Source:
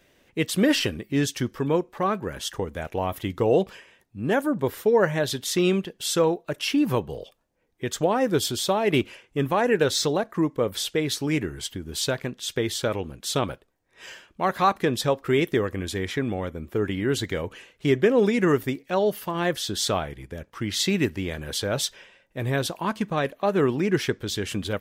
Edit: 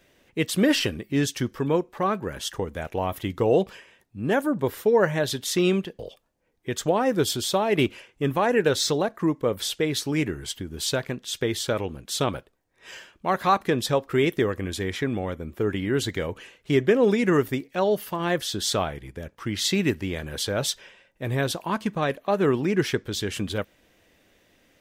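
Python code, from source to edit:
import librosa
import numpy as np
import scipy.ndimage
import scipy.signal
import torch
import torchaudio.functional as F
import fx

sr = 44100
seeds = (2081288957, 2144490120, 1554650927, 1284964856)

y = fx.edit(x, sr, fx.cut(start_s=5.99, length_s=1.15), tone=tone)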